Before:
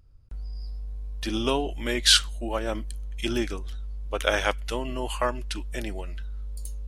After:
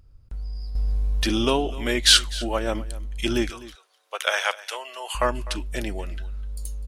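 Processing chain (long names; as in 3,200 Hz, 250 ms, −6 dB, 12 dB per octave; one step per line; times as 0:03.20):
0:03.50–0:05.15: Bessel high-pass filter 830 Hz, order 6
soft clipping −5 dBFS, distortion −26 dB
on a send: single-tap delay 252 ms −18.5 dB
0:00.75–0:01.45: on the sum: envelope flattener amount 100%
level +3.5 dB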